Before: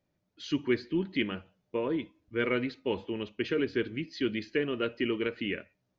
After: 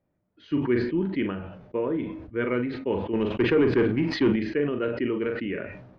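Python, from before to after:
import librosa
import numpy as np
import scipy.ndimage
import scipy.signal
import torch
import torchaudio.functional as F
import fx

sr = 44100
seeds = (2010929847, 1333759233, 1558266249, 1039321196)

y = fx.leveller(x, sr, passes=2, at=(3.13, 4.36))
y = scipy.signal.sosfilt(scipy.signal.butter(2, 1600.0, 'lowpass', fs=sr, output='sos'), y)
y = fx.doubler(y, sr, ms=41.0, db=-10)
y = fx.sustainer(y, sr, db_per_s=58.0)
y = y * 10.0 ** (3.0 / 20.0)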